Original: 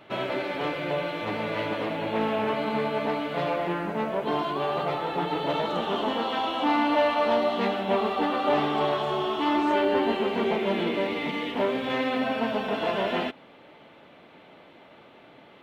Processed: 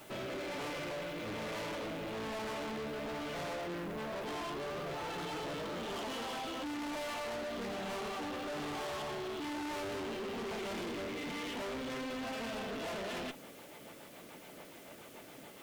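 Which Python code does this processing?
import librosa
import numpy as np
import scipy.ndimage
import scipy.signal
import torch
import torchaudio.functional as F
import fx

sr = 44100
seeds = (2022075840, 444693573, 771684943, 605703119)

y = fx.rotary_switch(x, sr, hz=1.1, then_hz=7.0, switch_at_s=12.47)
y = fx.quant_dither(y, sr, seeds[0], bits=10, dither='triangular')
y = fx.tube_stage(y, sr, drive_db=41.0, bias=0.4)
y = y * librosa.db_to_amplitude(2.5)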